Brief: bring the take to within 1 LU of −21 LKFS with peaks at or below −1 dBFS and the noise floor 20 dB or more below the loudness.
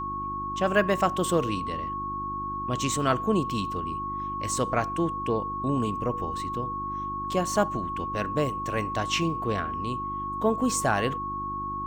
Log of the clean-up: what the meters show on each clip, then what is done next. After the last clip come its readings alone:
mains hum 50 Hz; hum harmonics up to 350 Hz; level of the hum −37 dBFS; interfering tone 1,100 Hz; level of the tone −30 dBFS; integrated loudness −28.0 LKFS; sample peak −8.5 dBFS; target loudness −21.0 LKFS
→ hum removal 50 Hz, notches 7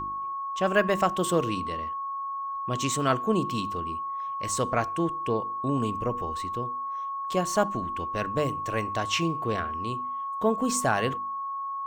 mains hum none found; interfering tone 1,100 Hz; level of the tone −30 dBFS
→ notch filter 1,100 Hz, Q 30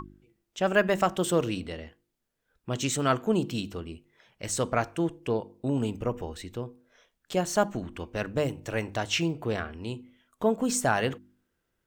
interfering tone none found; integrated loudness −29.0 LKFS; sample peak −9.5 dBFS; target loudness −21.0 LKFS
→ level +8 dB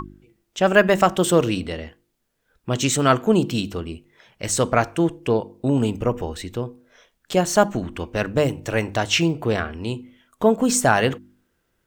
integrated loudness −21.0 LKFS; sample peak −1.5 dBFS; background noise floor −72 dBFS

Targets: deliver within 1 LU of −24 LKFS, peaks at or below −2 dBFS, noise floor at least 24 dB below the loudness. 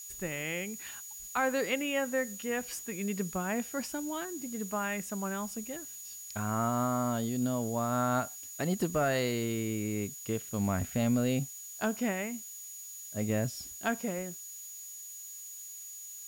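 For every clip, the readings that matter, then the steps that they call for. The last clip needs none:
interfering tone 6,800 Hz; level of the tone −44 dBFS; background noise floor −45 dBFS; target noise floor −58 dBFS; integrated loudness −33.5 LKFS; sample peak −18.5 dBFS; target loudness −24.0 LKFS
→ notch filter 6,800 Hz, Q 30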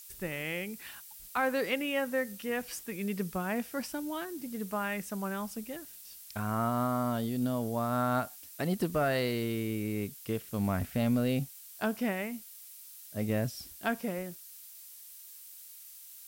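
interfering tone none found; background noise floor −50 dBFS; target noise floor −58 dBFS
→ broadband denoise 8 dB, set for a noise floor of −50 dBFS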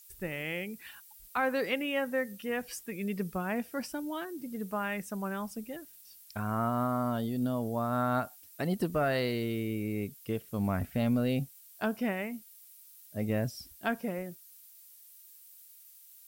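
background noise floor −55 dBFS; target noise floor −58 dBFS
→ broadband denoise 6 dB, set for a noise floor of −55 dBFS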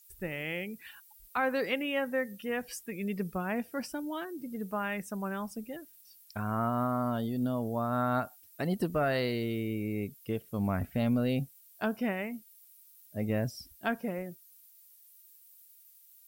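background noise floor −59 dBFS; integrated loudness −33.5 LKFS; sample peak −19.0 dBFS; target loudness −24.0 LKFS
→ level +9.5 dB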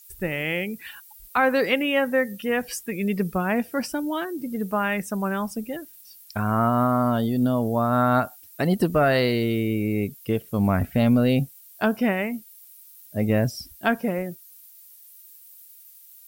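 integrated loudness −24.0 LKFS; sample peak −9.5 dBFS; background noise floor −49 dBFS

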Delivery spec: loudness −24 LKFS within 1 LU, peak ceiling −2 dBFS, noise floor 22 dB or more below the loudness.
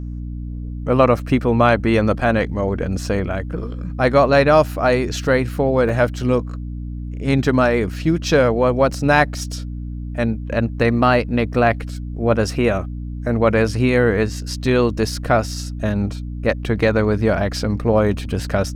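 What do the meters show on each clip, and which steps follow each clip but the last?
number of dropouts 1; longest dropout 4.0 ms; mains hum 60 Hz; hum harmonics up to 300 Hz; level of the hum −25 dBFS; integrated loudness −18.5 LKFS; sample peak −1.0 dBFS; target loudness −24.0 LKFS
→ repair the gap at 0:05.89, 4 ms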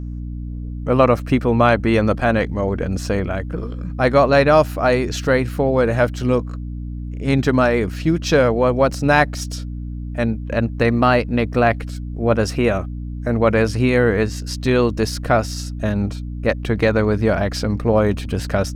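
number of dropouts 0; mains hum 60 Hz; hum harmonics up to 300 Hz; level of the hum −25 dBFS
→ mains-hum notches 60/120/180/240/300 Hz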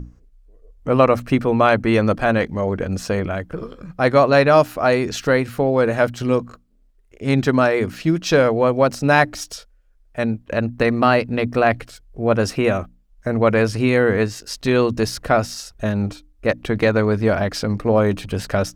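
mains hum none found; integrated loudness −19.0 LKFS; sample peak −1.0 dBFS; target loudness −24.0 LKFS
→ level −5 dB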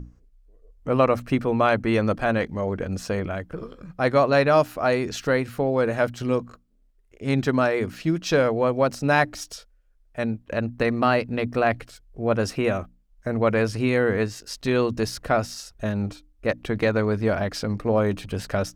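integrated loudness −24.0 LKFS; sample peak −6.0 dBFS; background noise floor −60 dBFS

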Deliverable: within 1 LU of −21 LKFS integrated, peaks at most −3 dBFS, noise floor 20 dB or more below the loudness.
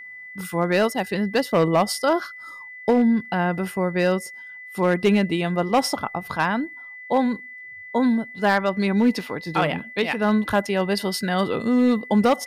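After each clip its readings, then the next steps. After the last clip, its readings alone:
share of clipped samples 0.6%; peaks flattened at −11.5 dBFS; interfering tone 2,000 Hz; level of the tone −37 dBFS; integrated loudness −22.0 LKFS; sample peak −11.5 dBFS; target loudness −21.0 LKFS
→ clipped peaks rebuilt −11.5 dBFS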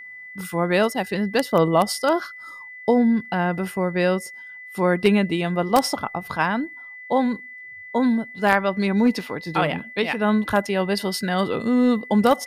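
share of clipped samples 0.0%; interfering tone 2,000 Hz; level of the tone −37 dBFS
→ notch filter 2,000 Hz, Q 30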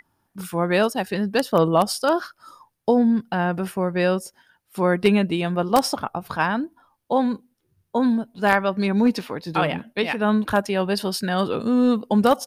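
interfering tone none found; integrated loudness −22.0 LKFS; sample peak −2.5 dBFS; target loudness −21.0 LKFS
→ level +1 dB
brickwall limiter −3 dBFS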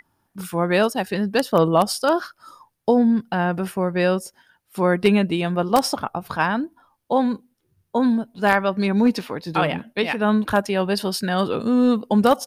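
integrated loudness −21.0 LKFS; sample peak −3.0 dBFS; background noise floor −72 dBFS

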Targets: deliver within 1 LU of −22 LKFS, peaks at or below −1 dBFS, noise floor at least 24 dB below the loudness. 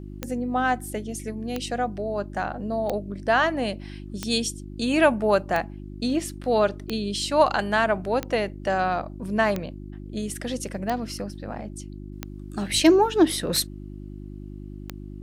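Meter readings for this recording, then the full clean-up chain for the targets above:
number of clicks 12; mains hum 50 Hz; hum harmonics up to 350 Hz; level of the hum −35 dBFS; integrated loudness −25.0 LKFS; sample peak −6.0 dBFS; target loudness −22.0 LKFS
→ click removal
hum removal 50 Hz, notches 7
level +3 dB

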